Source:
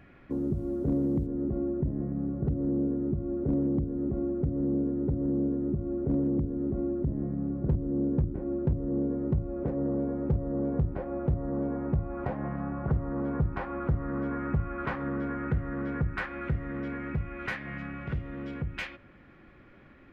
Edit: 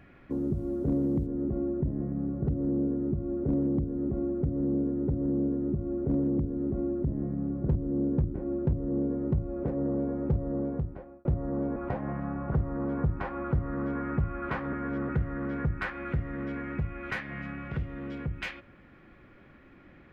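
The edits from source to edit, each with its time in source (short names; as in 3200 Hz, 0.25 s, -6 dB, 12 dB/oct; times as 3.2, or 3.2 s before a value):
10.52–11.25 fade out
11.76–12.12 cut
15.09–15.45 reverse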